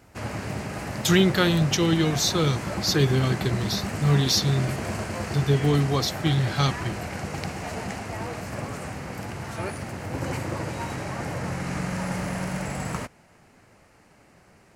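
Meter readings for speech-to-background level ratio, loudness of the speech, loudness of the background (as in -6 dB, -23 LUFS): 8.0 dB, -23.5 LUFS, -31.5 LUFS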